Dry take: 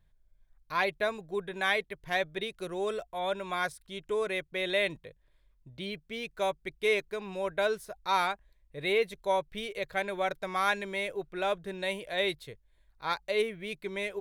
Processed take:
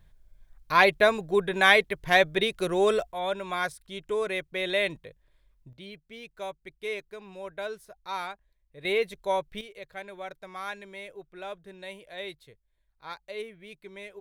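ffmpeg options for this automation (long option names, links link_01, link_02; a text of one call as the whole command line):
ffmpeg -i in.wav -af "asetnsamples=nb_out_samples=441:pad=0,asendcmd='3.12 volume volume 2dB;5.73 volume volume -6.5dB;8.85 volume volume 1dB;9.61 volume volume -8.5dB',volume=9.5dB" out.wav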